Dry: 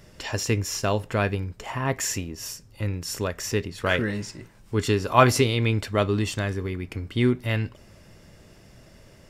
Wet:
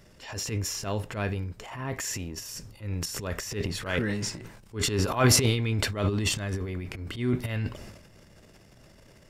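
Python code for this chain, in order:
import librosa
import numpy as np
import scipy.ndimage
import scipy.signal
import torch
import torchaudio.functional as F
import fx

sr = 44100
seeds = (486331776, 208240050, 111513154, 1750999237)

y = fx.transient(x, sr, attack_db=-11, sustain_db=fx.steps((0.0, 6.0), (2.36, 12.0)))
y = y * 10.0 ** (-4.5 / 20.0)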